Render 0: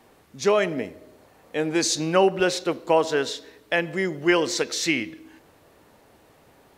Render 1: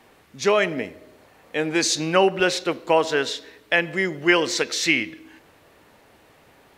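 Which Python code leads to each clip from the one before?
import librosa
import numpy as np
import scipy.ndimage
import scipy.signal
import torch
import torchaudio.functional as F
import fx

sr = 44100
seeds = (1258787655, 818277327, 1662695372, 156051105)

y = fx.peak_eq(x, sr, hz=2300.0, db=5.5, octaves=1.8)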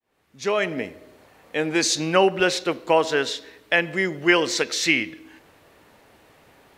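y = fx.fade_in_head(x, sr, length_s=0.84)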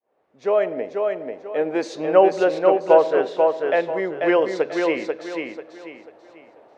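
y = fx.bandpass_q(x, sr, hz=590.0, q=2.0)
y = fx.echo_feedback(y, sr, ms=490, feedback_pct=32, wet_db=-4.0)
y = y * 10.0 ** (7.0 / 20.0)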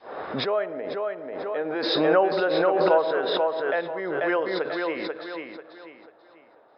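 y = scipy.signal.sosfilt(scipy.signal.cheby1(6, 9, 5200.0, 'lowpass', fs=sr, output='sos'), x)
y = fx.pre_swell(y, sr, db_per_s=29.0)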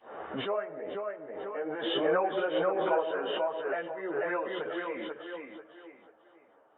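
y = fx.freq_compress(x, sr, knee_hz=1900.0, ratio=1.5)
y = fx.ensemble(y, sr)
y = y * 10.0 ** (-3.5 / 20.0)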